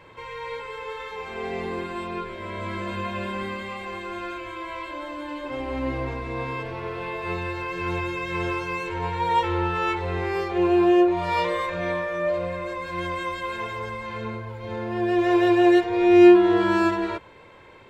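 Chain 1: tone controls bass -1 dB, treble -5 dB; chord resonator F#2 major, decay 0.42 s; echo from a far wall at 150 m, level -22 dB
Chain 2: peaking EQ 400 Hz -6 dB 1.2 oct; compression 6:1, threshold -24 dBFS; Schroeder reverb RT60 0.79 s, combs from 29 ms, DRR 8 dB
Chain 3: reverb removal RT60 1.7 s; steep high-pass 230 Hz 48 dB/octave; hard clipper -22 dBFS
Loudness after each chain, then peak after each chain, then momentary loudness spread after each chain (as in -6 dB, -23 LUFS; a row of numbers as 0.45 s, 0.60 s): -35.5 LUFS, -30.5 LUFS, -30.5 LUFS; -16.0 dBFS, -17.0 dBFS, -22.0 dBFS; 20 LU, 8 LU, 12 LU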